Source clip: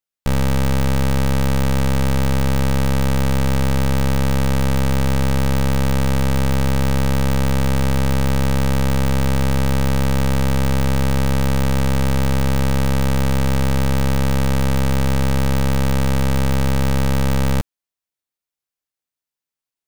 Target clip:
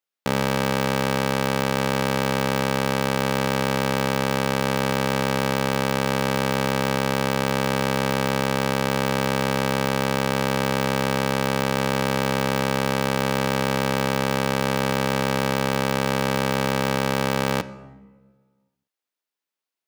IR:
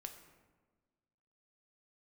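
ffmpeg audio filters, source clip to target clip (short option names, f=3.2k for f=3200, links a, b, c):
-filter_complex "[0:a]highpass=250,asplit=2[a][b];[1:a]atrim=start_sample=2205,lowpass=5.9k[c];[b][c]afir=irnorm=-1:irlink=0,volume=2dB[d];[a][d]amix=inputs=2:normalize=0,volume=-1.5dB"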